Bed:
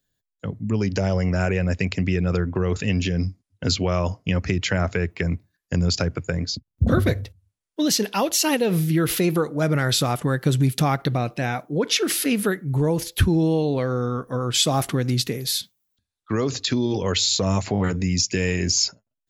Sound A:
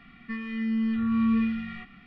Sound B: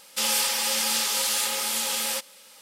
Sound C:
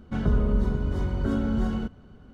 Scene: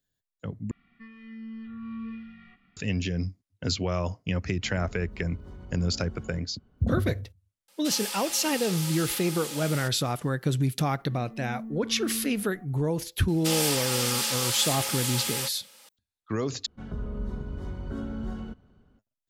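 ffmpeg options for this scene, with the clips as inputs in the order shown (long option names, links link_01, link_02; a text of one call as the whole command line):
ffmpeg -i bed.wav -i cue0.wav -i cue1.wav -i cue2.wav -filter_complex "[1:a]asplit=2[link_01][link_02];[3:a]asplit=2[link_03][link_04];[2:a]asplit=2[link_05][link_06];[0:a]volume=-6dB[link_07];[link_03]acompressor=threshold=-26dB:ratio=6:attack=3.2:release=140:knee=1:detection=peak[link_08];[link_02]lowpass=frequency=710:width_type=q:width=4.9[link_09];[link_04]dynaudnorm=framelen=340:gausssize=3:maxgain=4dB[link_10];[link_07]asplit=3[link_11][link_12][link_13];[link_11]atrim=end=0.714[link_14];[link_01]atrim=end=2.06,asetpts=PTS-STARTPTS,volume=-13.5dB[link_15];[link_12]atrim=start=2.766:end=16.664[link_16];[link_10]atrim=end=2.33,asetpts=PTS-STARTPTS,volume=-12.5dB[link_17];[link_13]atrim=start=18.986[link_18];[link_08]atrim=end=2.33,asetpts=PTS-STARTPTS,volume=-13dB,afade=type=in:duration=0.004:curve=hsin,afade=type=out:start_time=2.326:duration=0.004:curve=hsin,adelay=4520[link_19];[link_05]atrim=end=2.61,asetpts=PTS-STARTPTS,volume=-10.5dB,afade=type=in:duration=0.004:curve=hsin,afade=type=out:start_time=2.606:duration=0.004:curve=hsin,adelay=7680[link_20];[link_09]atrim=end=2.06,asetpts=PTS-STARTPTS,volume=-13dB,afade=type=in:duration=0.004:curve=hsin,afade=type=out:start_time=2.056:duration=0.004:curve=hsin,adelay=10800[link_21];[link_06]atrim=end=2.61,asetpts=PTS-STARTPTS,volume=-3dB,afade=type=in:duration=0.004:curve=hsin,afade=type=out:start_time=2.606:duration=0.004:curve=hsin,adelay=13280[link_22];[link_14][link_15]acrossfade=duration=0.004:curve1=hsin:curve2=hsin[link_23];[link_23][link_16]acrossfade=duration=0.004:curve1=hsin:curve2=hsin[link_24];[link_24][link_17]acrossfade=duration=0.004:curve1=hsin:curve2=hsin[link_25];[link_25][link_18]acrossfade=duration=0.004:curve1=hsin:curve2=hsin[link_26];[link_26][link_19][link_20][link_21][link_22]amix=inputs=5:normalize=0" out.wav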